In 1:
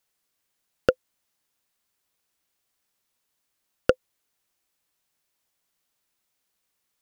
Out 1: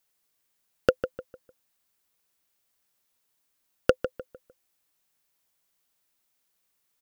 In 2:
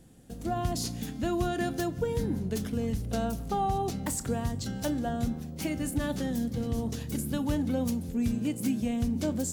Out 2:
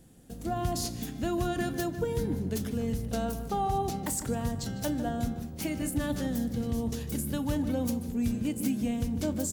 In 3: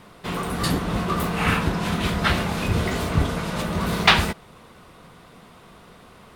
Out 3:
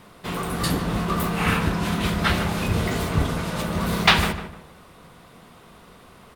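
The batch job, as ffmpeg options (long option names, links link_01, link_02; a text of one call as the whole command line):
ffmpeg -i in.wav -filter_complex "[0:a]highshelf=frequency=11000:gain=6,asplit=2[link_01][link_02];[link_02]adelay=151,lowpass=frequency=2200:poles=1,volume=-9.5dB,asplit=2[link_03][link_04];[link_04]adelay=151,lowpass=frequency=2200:poles=1,volume=0.34,asplit=2[link_05][link_06];[link_06]adelay=151,lowpass=frequency=2200:poles=1,volume=0.34,asplit=2[link_07][link_08];[link_08]adelay=151,lowpass=frequency=2200:poles=1,volume=0.34[link_09];[link_03][link_05][link_07][link_09]amix=inputs=4:normalize=0[link_10];[link_01][link_10]amix=inputs=2:normalize=0,volume=-1dB" out.wav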